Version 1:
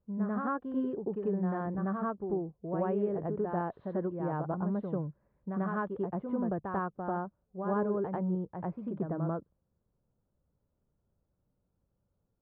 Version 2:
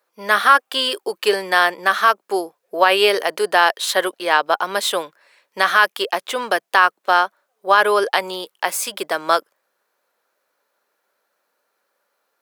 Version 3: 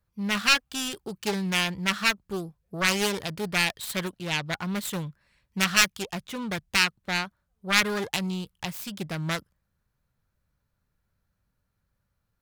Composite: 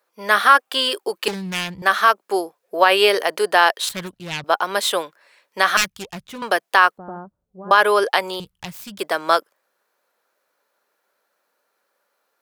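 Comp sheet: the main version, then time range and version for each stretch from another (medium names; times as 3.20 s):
2
1.28–1.82 s: from 3
3.89–4.44 s: from 3
5.77–6.42 s: from 3
6.98–7.71 s: from 1
8.40–8.99 s: from 3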